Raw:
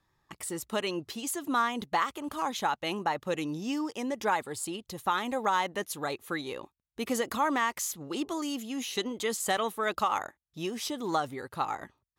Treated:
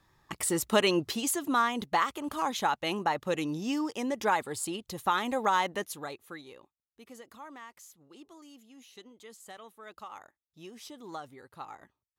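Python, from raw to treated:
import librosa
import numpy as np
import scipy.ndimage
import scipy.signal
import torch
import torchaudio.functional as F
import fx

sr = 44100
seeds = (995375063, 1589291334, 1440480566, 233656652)

y = fx.gain(x, sr, db=fx.line((1.03, 7.0), (1.54, 1.0), (5.72, 1.0), (6.16, -8.0), (7.02, -19.0), (9.71, -19.0), (10.81, -12.0)))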